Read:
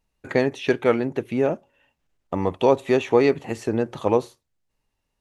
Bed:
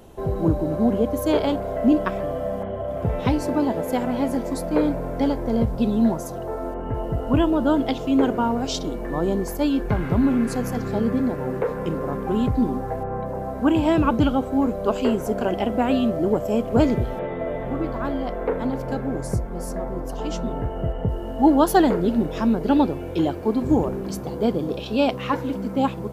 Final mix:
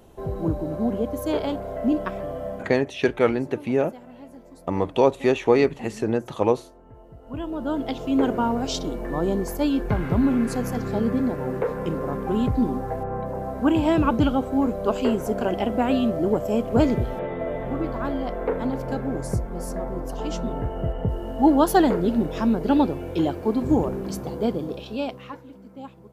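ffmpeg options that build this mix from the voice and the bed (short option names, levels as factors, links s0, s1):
-filter_complex "[0:a]adelay=2350,volume=0.944[s0];[1:a]volume=5.62,afade=t=out:st=2.49:d=0.41:silence=0.158489,afade=t=in:st=7.21:d=1.12:silence=0.105925,afade=t=out:st=24.25:d=1.17:silence=0.141254[s1];[s0][s1]amix=inputs=2:normalize=0"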